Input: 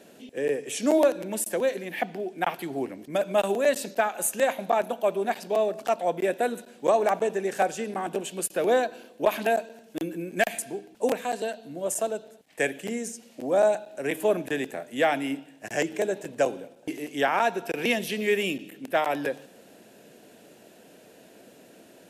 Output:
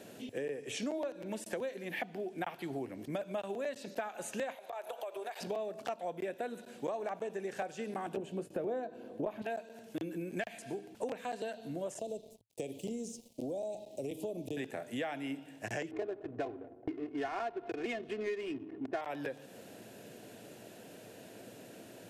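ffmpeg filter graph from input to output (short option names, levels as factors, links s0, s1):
-filter_complex "[0:a]asettb=1/sr,asplit=3[s0][s1][s2];[s0]atrim=end=4.554[s3];[s1]atrim=start=4.55:end=5.41,asetpts=PTS-STARTPTS,afade=t=in:d=0.004:c=qsin,afade=t=out:st=0.856:d=0.004:c=qsin,highpass=f=460:w=0.5412,highpass=f=460:w=1.3066,bandreject=f=5700:w=28,acompressor=threshold=0.0158:ratio=10:attack=3.2:release=140:knee=1:detection=peak[s4];[s2]atrim=start=5.406[s5];[s3][s4]acrossfade=d=0.004:c1=hsin:c2=qsin[s6];[s6][s5]acrossfade=d=0.004:c1=qsin:c2=hsin,asettb=1/sr,asplit=3[s7][s8][s9];[s7]atrim=end=8.174[s10];[s8]atrim=start=8.17:end=9.42,asetpts=PTS-STARTPTS,afade=t=in:d=0.004:c=qsin,afade=t=out:st=1.246:d=0.004:c=qsin,tiltshelf=f=1300:g=9,asplit=2[s11][s12];[s12]adelay=19,volume=0.224[s13];[s11][s13]amix=inputs=2:normalize=0,atrim=end_sample=55125[s14];[s9]atrim=start=9.416[s15];[s10][s14]acrossfade=d=0.004:c1=hsin:c2=qsin[s16];[s16][s15]acrossfade=d=0.004:c1=qsin:c2=hsin,asettb=1/sr,asplit=3[s17][s18][s19];[s17]atrim=end=11.994[s20];[s18]atrim=start=11.99:end=14.57,asetpts=PTS-STARTPTS,afade=t=in:d=0.004:c=qsin,afade=t=out:st=2.576:d=0.004:c=qsin,aeval=exprs='sgn(val(0))*max(abs(val(0))-0.00211,0)':c=same,acompressor=threshold=0.0355:ratio=2:attack=3.2:release=140:knee=1:detection=peak,asuperstop=centerf=1500:order=4:qfactor=0.54[s21];[s19]atrim=start=14.566[s22];[s20][s21]acrossfade=d=0.004:c1=hsin:c2=qsin[s23];[s23][s22]acrossfade=d=0.004:c1=qsin:c2=hsin,asettb=1/sr,asplit=3[s24][s25][s26];[s24]atrim=end=15.914[s27];[s25]atrim=start=15.91:end=19.01,asetpts=PTS-STARTPTS,afade=t=in:d=0.004:c=qsin,afade=t=out:st=3.096:d=0.004:c=qsin,aemphasis=mode=reproduction:type=75fm,aecho=1:1:2.8:0.83,atrim=end_sample=136710,adynamicsmooth=sensitivity=3.5:basefreq=660[s28];[s26]atrim=start=19.006[s29];[s27][s28]acrossfade=d=0.004:c1=hsin:c2=qsin[s30];[s30][s29]acrossfade=d=0.004:c1=qsin:c2=hsin,acrossover=split=6100[s31][s32];[s32]acompressor=threshold=0.00251:ratio=4:attack=1:release=60[s33];[s31][s33]amix=inputs=2:normalize=0,equalizer=f=110:t=o:w=0.47:g=11,acompressor=threshold=0.0158:ratio=6"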